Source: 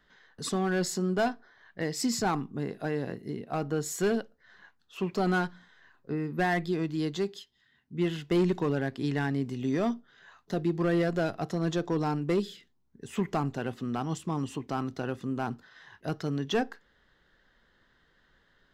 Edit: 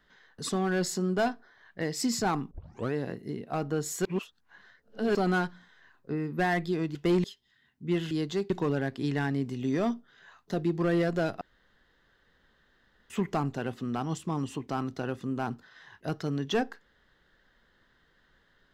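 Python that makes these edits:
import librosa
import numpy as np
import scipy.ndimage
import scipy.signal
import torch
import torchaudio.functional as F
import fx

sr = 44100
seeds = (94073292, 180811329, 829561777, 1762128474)

y = fx.edit(x, sr, fx.tape_start(start_s=2.51, length_s=0.43),
    fx.reverse_span(start_s=4.05, length_s=1.1),
    fx.swap(start_s=6.95, length_s=0.39, other_s=8.21, other_length_s=0.29),
    fx.room_tone_fill(start_s=11.41, length_s=1.69), tone=tone)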